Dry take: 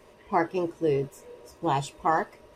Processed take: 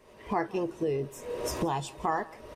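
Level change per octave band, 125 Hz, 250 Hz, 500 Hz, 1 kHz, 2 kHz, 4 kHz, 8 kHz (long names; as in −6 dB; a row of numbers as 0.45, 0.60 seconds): −3.0, −2.5, −3.5, −5.0, −4.5, 0.0, +4.0 decibels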